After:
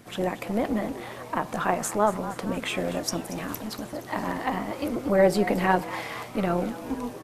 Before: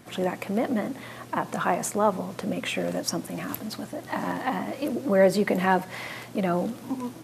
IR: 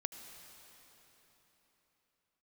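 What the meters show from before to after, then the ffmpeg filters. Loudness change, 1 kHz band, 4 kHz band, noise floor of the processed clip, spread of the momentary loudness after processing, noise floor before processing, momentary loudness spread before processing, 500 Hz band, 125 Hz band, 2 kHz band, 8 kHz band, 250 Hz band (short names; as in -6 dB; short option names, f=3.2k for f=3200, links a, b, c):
0.0 dB, +0.5 dB, 0.0 dB, -42 dBFS, 11 LU, -44 dBFS, 12 LU, 0.0 dB, -0.5 dB, 0.0 dB, 0.0 dB, -0.5 dB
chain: -filter_complex "[0:a]tremolo=f=210:d=0.519,asplit=7[a][b][c][d][e][f][g];[b]adelay=234,afreqshift=140,volume=-15dB[h];[c]adelay=468,afreqshift=280,volume=-19.4dB[i];[d]adelay=702,afreqshift=420,volume=-23.9dB[j];[e]adelay=936,afreqshift=560,volume=-28.3dB[k];[f]adelay=1170,afreqshift=700,volume=-32.7dB[l];[g]adelay=1404,afreqshift=840,volume=-37.2dB[m];[a][h][i][j][k][l][m]amix=inputs=7:normalize=0,volume=2dB"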